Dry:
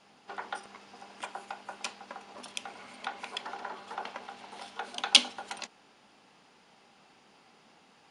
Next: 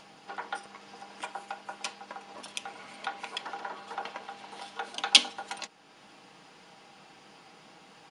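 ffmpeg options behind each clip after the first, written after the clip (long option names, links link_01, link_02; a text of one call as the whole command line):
ffmpeg -i in.wav -filter_complex "[0:a]aecho=1:1:6.3:0.39,asplit=2[link_01][link_02];[link_02]acompressor=mode=upward:threshold=-41dB:ratio=2.5,volume=-1dB[link_03];[link_01][link_03]amix=inputs=2:normalize=0,volume=-5dB" out.wav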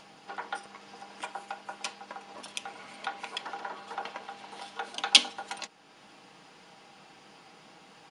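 ffmpeg -i in.wav -af anull out.wav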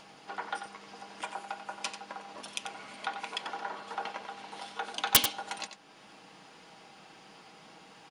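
ffmpeg -i in.wav -af "aeval=exprs='(mod(2.99*val(0)+1,2)-1)/2.99':channel_layout=same,aecho=1:1:91:0.335" out.wav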